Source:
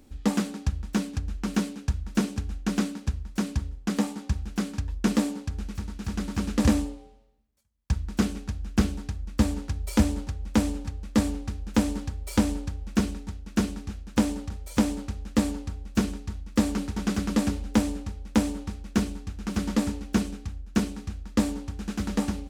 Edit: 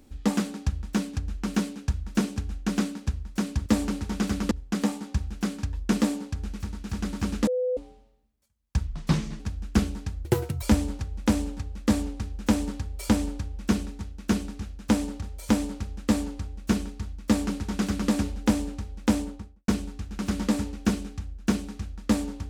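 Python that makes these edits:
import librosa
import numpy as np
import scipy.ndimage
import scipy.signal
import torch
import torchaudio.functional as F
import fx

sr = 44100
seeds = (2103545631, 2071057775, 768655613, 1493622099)

y = fx.studio_fade_out(x, sr, start_s=18.43, length_s=0.53)
y = fx.edit(y, sr, fx.bleep(start_s=6.62, length_s=0.3, hz=503.0, db=-23.0),
    fx.speed_span(start_s=8.02, length_s=0.4, speed=0.76),
    fx.speed_span(start_s=9.27, length_s=0.63, speed=1.68),
    fx.duplicate(start_s=16.53, length_s=0.85, to_s=3.66), tone=tone)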